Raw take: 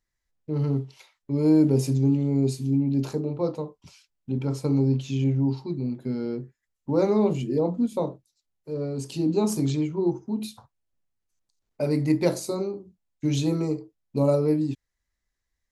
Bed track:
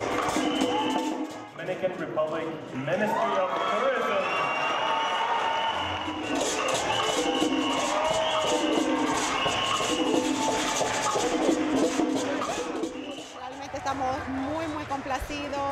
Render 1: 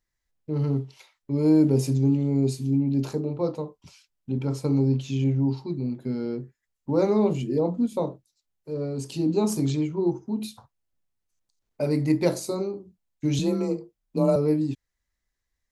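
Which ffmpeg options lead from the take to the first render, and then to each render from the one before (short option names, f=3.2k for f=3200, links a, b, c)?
-filter_complex "[0:a]asettb=1/sr,asplit=3[a][b][c];[a]atrim=end=13.394[d];[b]atrim=start=13.39:end=14.36,asetpts=PTS-STARTPTS,afade=t=in:d=0.004:c=qsin,afade=t=out:st=0.966:d=0.004:c=qsin,afreqshift=28[e];[c]atrim=start=14.356[f];[d][e]acrossfade=d=0.004:c1=hsin:c2=qsin[g];[g][f]acrossfade=d=0.004:c1=qsin:c2=hsin"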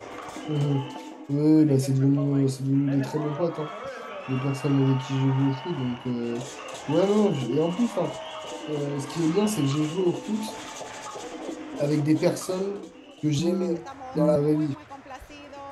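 -filter_complex "[1:a]volume=-11dB[a];[0:a][a]amix=inputs=2:normalize=0"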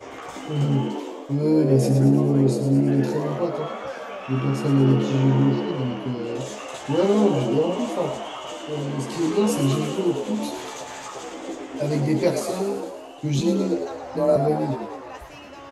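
-filter_complex "[0:a]asplit=2[a][b];[b]adelay=15,volume=-4dB[c];[a][c]amix=inputs=2:normalize=0,asplit=2[d][e];[e]asplit=8[f][g][h][i][j][k][l][m];[f]adelay=111,afreqshift=78,volume=-8.5dB[n];[g]adelay=222,afreqshift=156,volume=-12.8dB[o];[h]adelay=333,afreqshift=234,volume=-17.1dB[p];[i]adelay=444,afreqshift=312,volume=-21.4dB[q];[j]adelay=555,afreqshift=390,volume=-25.7dB[r];[k]adelay=666,afreqshift=468,volume=-30dB[s];[l]adelay=777,afreqshift=546,volume=-34.3dB[t];[m]adelay=888,afreqshift=624,volume=-38.6dB[u];[n][o][p][q][r][s][t][u]amix=inputs=8:normalize=0[v];[d][v]amix=inputs=2:normalize=0"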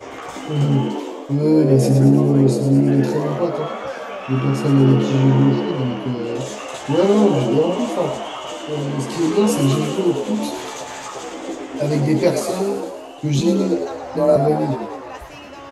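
-af "volume=4.5dB,alimiter=limit=-3dB:level=0:latency=1"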